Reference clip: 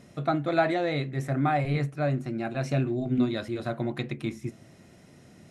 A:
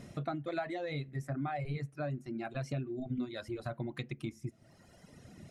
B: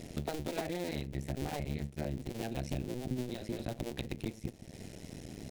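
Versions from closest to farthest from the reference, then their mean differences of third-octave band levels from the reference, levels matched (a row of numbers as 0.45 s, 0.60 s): A, B; 4.0 dB, 11.0 dB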